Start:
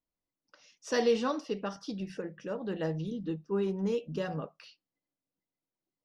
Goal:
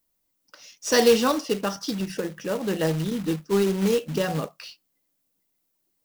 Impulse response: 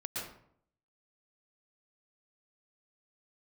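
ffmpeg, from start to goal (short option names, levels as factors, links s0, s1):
-af "aemphasis=mode=production:type=50kf,acrusher=bits=3:mode=log:mix=0:aa=0.000001,volume=2.66"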